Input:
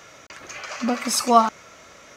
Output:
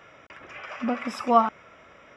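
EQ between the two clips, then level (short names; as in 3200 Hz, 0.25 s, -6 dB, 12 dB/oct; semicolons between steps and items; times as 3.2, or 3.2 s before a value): polynomial smoothing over 25 samples; -3.5 dB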